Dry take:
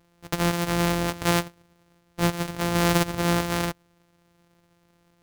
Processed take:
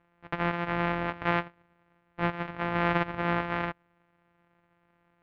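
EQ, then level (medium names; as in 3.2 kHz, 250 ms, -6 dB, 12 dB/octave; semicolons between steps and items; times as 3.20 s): low-pass 2.4 kHz 24 dB/octave; bass shelf 320 Hz -9.5 dB; peaking EQ 450 Hz -3.5 dB 1 oct; 0.0 dB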